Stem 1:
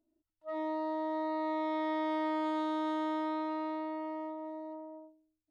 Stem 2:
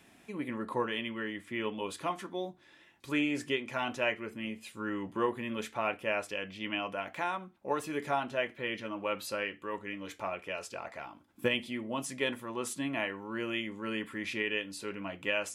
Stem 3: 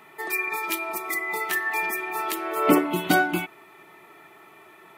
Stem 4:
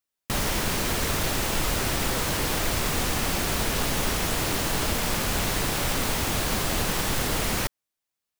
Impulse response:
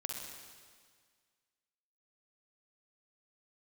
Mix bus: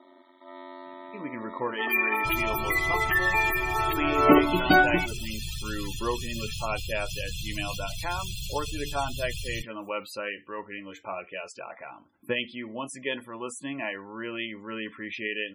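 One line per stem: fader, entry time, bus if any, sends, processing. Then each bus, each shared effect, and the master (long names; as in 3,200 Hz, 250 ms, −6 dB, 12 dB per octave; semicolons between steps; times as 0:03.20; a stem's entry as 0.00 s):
−7.5 dB, 0.00 s, no send, compressor on every frequency bin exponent 0.2; high-shelf EQ 2,600 Hz +8.5 dB; ring modulation 45 Hz
+2.0 dB, 0.85 s, no send, no processing
+2.5 dB, 1.60 s, no send, no processing
−8.0 dB, 1.95 s, no send, elliptic band-stop filter 140–2,800 Hz, stop band 40 dB; comb filter 1.2 ms, depth 36%; envelope flattener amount 100%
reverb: not used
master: low-shelf EQ 310 Hz −4 dB; spectral peaks only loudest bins 64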